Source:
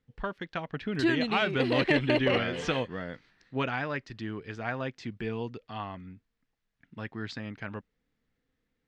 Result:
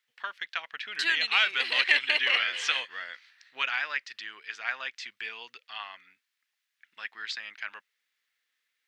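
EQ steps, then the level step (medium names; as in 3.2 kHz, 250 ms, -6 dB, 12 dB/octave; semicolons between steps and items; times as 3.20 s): Chebyshev high-pass 2.1 kHz, order 2; +8.5 dB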